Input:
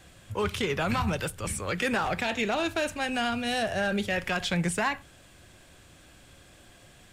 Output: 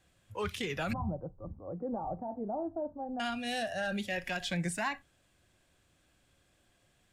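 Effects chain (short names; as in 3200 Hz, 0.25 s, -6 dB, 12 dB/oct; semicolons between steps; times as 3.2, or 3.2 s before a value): 0.93–3.2 steep low-pass 990 Hz 36 dB/oct; spectral noise reduction 10 dB; gain -6 dB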